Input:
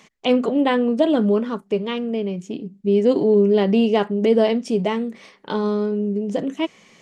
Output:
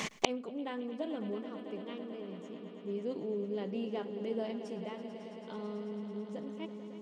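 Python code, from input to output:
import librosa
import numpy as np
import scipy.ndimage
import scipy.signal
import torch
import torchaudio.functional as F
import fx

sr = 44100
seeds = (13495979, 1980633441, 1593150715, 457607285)

y = fx.echo_swell(x, sr, ms=110, loudest=5, wet_db=-14)
y = fx.gate_flip(y, sr, shuts_db=-22.0, range_db=-36)
y = y * 10.0 ** (15.0 / 20.0)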